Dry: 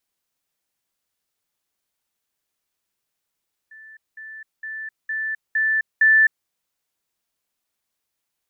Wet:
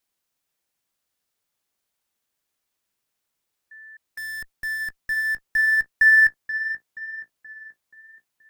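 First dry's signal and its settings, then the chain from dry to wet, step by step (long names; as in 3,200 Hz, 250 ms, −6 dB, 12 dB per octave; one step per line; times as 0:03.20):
level staircase 1,760 Hz −41 dBFS, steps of 6 dB, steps 6, 0.26 s 0.20 s
in parallel at −8 dB: comparator with hysteresis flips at −36.5 dBFS
on the sum: tape delay 478 ms, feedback 64%, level −8 dB, low-pass 1,700 Hz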